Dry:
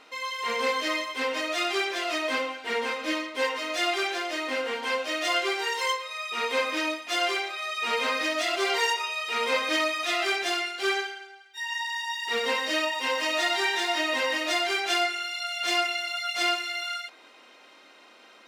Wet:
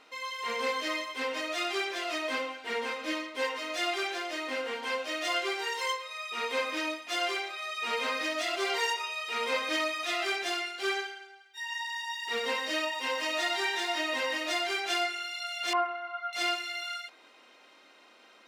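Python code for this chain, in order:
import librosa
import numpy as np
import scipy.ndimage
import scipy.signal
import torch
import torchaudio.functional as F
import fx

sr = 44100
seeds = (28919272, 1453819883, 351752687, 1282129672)

y = fx.lowpass_res(x, sr, hz=1100.0, q=4.9, at=(15.73, 16.33))
y = y * 10.0 ** (-4.5 / 20.0)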